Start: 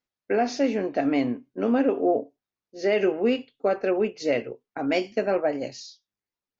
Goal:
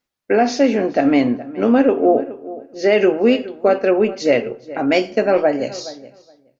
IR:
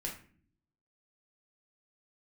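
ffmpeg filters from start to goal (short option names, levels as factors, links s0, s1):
-filter_complex "[0:a]asplit=2[s0][s1];[s1]adelay=420,lowpass=f=2300:p=1,volume=0.15,asplit=2[s2][s3];[s3]adelay=420,lowpass=f=2300:p=1,volume=0.15[s4];[s0][s2][s4]amix=inputs=3:normalize=0,asplit=2[s5][s6];[1:a]atrim=start_sample=2205,asetrate=25137,aresample=44100[s7];[s6][s7]afir=irnorm=-1:irlink=0,volume=0.126[s8];[s5][s8]amix=inputs=2:normalize=0,volume=2.37"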